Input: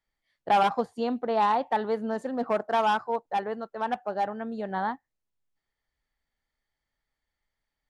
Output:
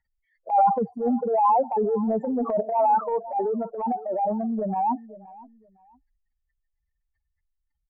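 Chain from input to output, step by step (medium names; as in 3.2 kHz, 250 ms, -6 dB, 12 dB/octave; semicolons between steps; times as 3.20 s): spectral contrast enhancement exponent 3.8; steep low-pass 5.4 kHz; in parallel at -1 dB: peak limiter -26 dBFS, peak gain reduction 9.5 dB; on the sum: feedback delay 515 ms, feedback 27%, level -22 dB; transient shaper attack -11 dB, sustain +4 dB; trim +3 dB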